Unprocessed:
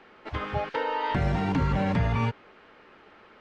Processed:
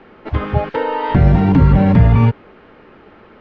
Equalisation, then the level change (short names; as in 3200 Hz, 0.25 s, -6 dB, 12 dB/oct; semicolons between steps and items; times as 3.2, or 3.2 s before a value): air absorption 120 m; low shelf 500 Hz +10.5 dB; +6.0 dB